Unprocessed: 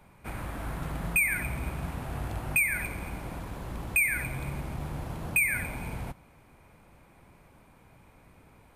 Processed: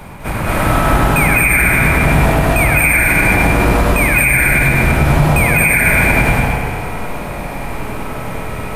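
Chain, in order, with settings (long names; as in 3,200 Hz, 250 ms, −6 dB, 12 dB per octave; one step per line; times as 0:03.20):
reversed playback
downward compressor, threshold −40 dBFS, peak gain reduction 17.5 dB
reversed playback
bucket-brigade delay 99 ms, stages 2,048, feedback 65%, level −4 dB
convolution reverb RT60 1.6 s, pre-delay 166 ms, DRR −7.5 dB
boost into a limiter +24.5 dB
level −1 dB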